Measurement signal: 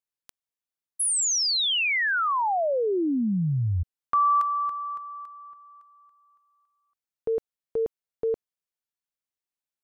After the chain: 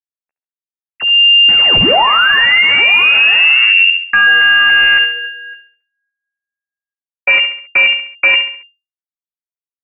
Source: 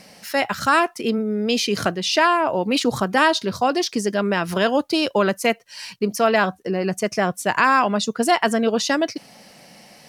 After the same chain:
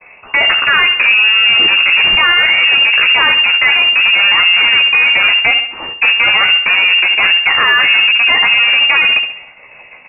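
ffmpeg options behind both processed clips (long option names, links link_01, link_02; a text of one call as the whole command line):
ffmpeg -i in.wav -filter_complex "[0:a]agate=range=-35dB:threshold=-47dB:ratio=16:release=139:detection=peak,highpass=frequency=45:poles=1,afwtdn=0.0708,bandreject=frequency=50:width_type=h:width=6,bandreject=frequency=100:width_type=h:width=6,areverse,acompressor=threshold=-26dB:ratio=16:attack=0.24:release=185:knee=1:detection=rms,areverse,asoftclip=type=tanh:threshold=-30dB,aeval=exprs='0.0316*(cos(1*acos(clip(val(0)/0.0316,-1,1)))-cos(1*PI/2))+0.01*(cos(3*acos(clip(val(0)/0.0316,-1,1)))-cos(3*PI/2))+0.01*(cos(5*acos(clip(val(0)/0.0316,-1,1)))-cos(5*PI/2))+0.00398*(cos(7*acos(clip(val(0)/0.0316,-1,1)))-cos(7*PI/2))+0.00355*(cos(8*acos(clip(val(0)/0.0316,-1,1)))-cos(8*PI/2))':channel_layout=same,aphaser=in_gain=1:out_gain=1:delay=1.5:decay=0.3:speed=1:type=sinusoidal,asplit=2[link_01][link_02];[link_02]adelay=13,volume=-5dB[link_03];[link_01][link_03]amix=inputs=2:normalize=0,asplit=2[link_04][link_05];[link_05]aecho=0:1:68|136|204|272:0.224|0.0963|0.0414|0.0178[link_06];[link_04][link_06]amix=inputs=2:normalize=0,lowpass=frequency=2400:width_type=q:width=0.5098,lowpass=frequency=2400:width_type=q:width=0.6013,lowpass=frequency=2400:width_type=q:width=0.9,lowpass=frequency=2400:width_type=q:width=2.563,afreqshift=-2800,alimiter=level_in=31dB:limit=-1dB:release=50:level=0:latency=1,volume=-1dB" out.wav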